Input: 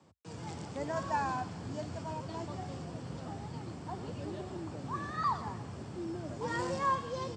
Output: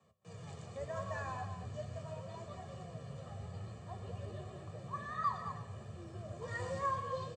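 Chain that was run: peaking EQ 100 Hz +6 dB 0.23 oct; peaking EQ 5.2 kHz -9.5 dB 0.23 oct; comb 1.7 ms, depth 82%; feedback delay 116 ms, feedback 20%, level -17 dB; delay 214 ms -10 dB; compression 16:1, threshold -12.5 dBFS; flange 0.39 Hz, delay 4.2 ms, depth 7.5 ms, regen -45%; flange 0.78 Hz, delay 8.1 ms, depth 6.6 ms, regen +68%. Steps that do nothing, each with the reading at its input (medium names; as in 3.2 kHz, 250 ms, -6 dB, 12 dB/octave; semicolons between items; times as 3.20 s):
compression, threshold -12.5 dBFS: peak at its input -16.0 dBFS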